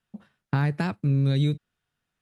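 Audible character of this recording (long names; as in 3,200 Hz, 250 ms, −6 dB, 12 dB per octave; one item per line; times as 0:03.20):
background noise floor −83 dBFS
spectral slope −7.0 dB per octave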